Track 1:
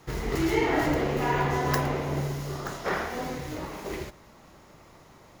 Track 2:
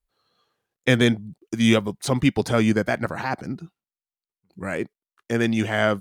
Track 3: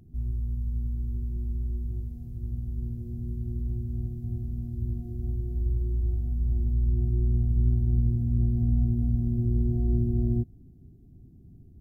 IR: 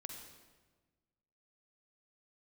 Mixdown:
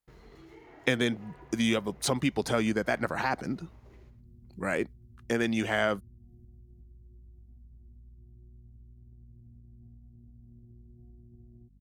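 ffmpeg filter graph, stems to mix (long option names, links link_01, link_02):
-filter_complex "[0:a]highshelf=frequency=6800:gain=-12,agate=range=-24dB:threshold=-44dB:ratio=16:detection=peak,volume=-19.5dB,asplit=2[link_01][link_02];[link_02]volume=-18.5dB[link_03];[1:a]acompressor=threshold=-24dB:ratio=3,highpass=frequency=200:poles=1,volume=0.5dB[link_04];[2:a]aeval=exprs='val(0)+0.0158*(sin(2*PI*50*n/s)+sin(2*PI*2*50*n/s)/2+sin(2*PI*3*50*n/s)/3+sin(2*PI*4*50*n/s)/4+sin(2*PI*5*50*n/s)/5)':channel_layout=same,acompressor=threshold=-25dB:ratio=6,adelay=1250,volume=-16.5dB[link_05];[link_01][link_05]amix=inputs=2:normalize=0,acompressor=threshold=-50dB:ratio=6,volume=0dB[link_06];[link_03]aecho=0:1:107:1[link_07];[link_04][link_06][link_07]amix=inputs=3:normalize=0"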